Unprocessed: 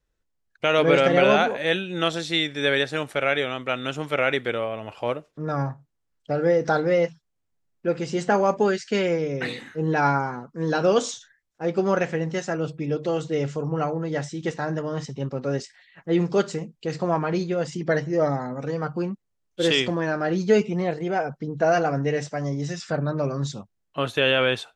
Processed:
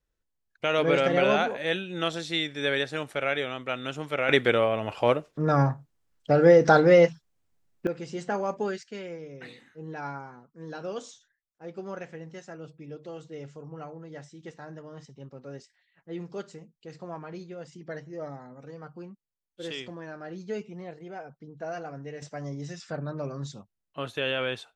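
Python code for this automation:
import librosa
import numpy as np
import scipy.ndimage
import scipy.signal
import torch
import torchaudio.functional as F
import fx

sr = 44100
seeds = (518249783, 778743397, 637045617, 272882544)

y = fx.gain(x, sr, db=fx.steps((0.0, -5.0), (4.29, 4.0), (7.87, -9.0), (8.83, -15.5), (22.22, -8.5)))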